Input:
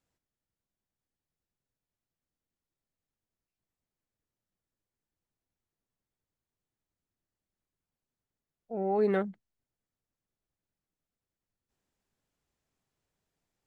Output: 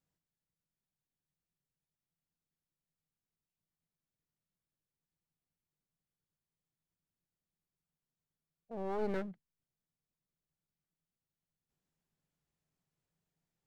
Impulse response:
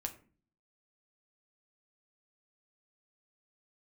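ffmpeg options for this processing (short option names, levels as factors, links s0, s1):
-af "equalizer=f=160:w=3.7:g=12.5,aeval=exprs='clip(val(0),-1,0.0126)':c=same,volume=0.473"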